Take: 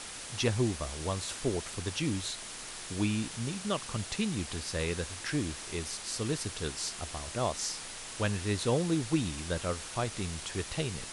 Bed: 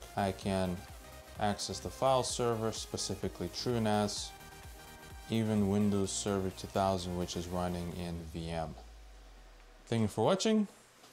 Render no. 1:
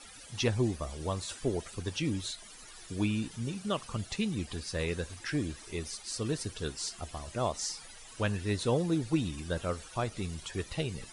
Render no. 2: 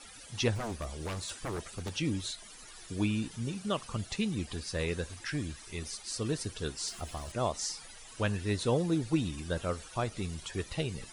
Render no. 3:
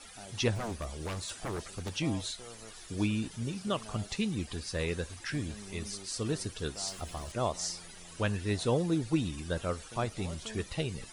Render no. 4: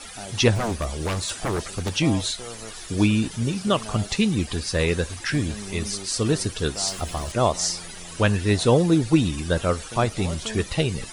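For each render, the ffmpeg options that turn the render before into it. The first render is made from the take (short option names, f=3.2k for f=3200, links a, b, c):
-af "afftdn=nr=15:nf=-43"
-filter_complex "[0:a]asettb=1/sr,asplit=3[a][b][c];[a]atrim=end=0.554[d];[b]atrim=start=0.55:end=1.94,asetpts=PTS-STARTPTS,afade=t=in:d=0.004:c=qsin,afade=t=out:st=1.386:d=0.004:c=qsin,aeval=exprs='0.0299*(abs(mod(val(0)/0.0299+3,4)-2)-1)':c=same[e];[c]atrim=start=1.936[f];[d][e]acrossfade=d=0.004:c1=hsin:c2=qsin[g];[g][f]acrossfade=d=0.004:c1=qsin:c2=hsin,asettb=1/sr,asplit=3[h][i][j];[h]atrim=end=5.244[k];[i]atrim=start=5.24:end=5.82,asetpts=PTS-STARTPTS,afade=t=in:d=0.004:c=qsin,afade=t=out:st=0.576:d=0.004:c=qsin,equalizer=f=400:t=o:w=1.4:g=-6.5[l];[j]atrim=start=5.816[m];[k][l]acrossfade=d=0.004:c1=hsin:c2=qsin[n];[n][m]acrossfade=d=0.004:c1=qsin:c2=hsin,asettb=1/sr,asplit=3[o][p][q];[o]atrim=end=6.884[r];[p]atrim=start=6.88:end=7.32,asetpts=PTS-STARTPTS,afade=t=in:d=0.004:c=qsin,afade=t=out:st=0.436:d=0.004:c=qsin,aeval=exprs='val(0)+0.5*0.00335*sgn(val(0))':c=same[s];[q]atrim=start=7.316[t];[r][s]acrossfade=d=0.004:c1=hsin:c2=qsin[u];[u][t]acrossfade=d=0.004:c1=qsin:c2=hsin"
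-filter_complex "[1:a]volume=-17.5dB[a];[0:a][a]amix=inputs=2:normalize=0"
-af "volume=11dB"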